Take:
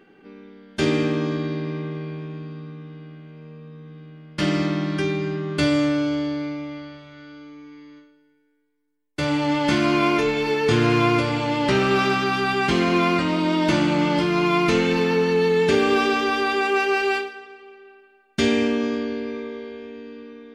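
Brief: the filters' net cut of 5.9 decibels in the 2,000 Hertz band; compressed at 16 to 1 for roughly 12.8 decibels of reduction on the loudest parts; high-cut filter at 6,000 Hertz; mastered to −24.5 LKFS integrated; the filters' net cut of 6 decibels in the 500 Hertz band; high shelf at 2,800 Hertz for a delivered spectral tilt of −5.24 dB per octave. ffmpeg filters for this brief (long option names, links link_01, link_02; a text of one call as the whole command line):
ffmpeg -i in.wav -af "lowpass=6000,equalizer=frequency=500:width_type=o:gain=-8,equalizer=frequency=2000:width_type=o:gain=-6,highshelf=frequency=2800:gain=-3.5,acompressor=threshold=-31dB:ratio=16,volume=11.5dB" out.wav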